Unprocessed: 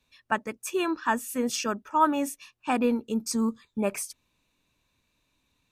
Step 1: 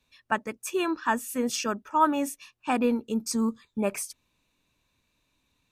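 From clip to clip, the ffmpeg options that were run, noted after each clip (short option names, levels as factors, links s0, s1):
-af anull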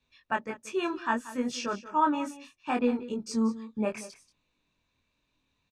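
-af "lowpass=5500,flanger=delay=20:depth=3.7:speed=0.67,aecho=1:1:183:0.158"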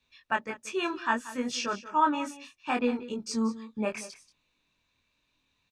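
-af "equalizer=f=3500:w=0.31:g=6,volume=0.794"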